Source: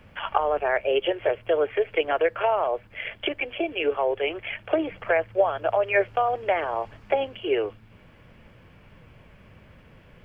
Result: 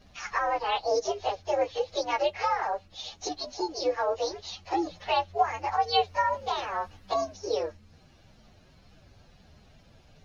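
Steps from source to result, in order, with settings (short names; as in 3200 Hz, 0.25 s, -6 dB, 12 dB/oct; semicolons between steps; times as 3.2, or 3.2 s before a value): inharmonic rescaling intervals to 127%; gain -1 dB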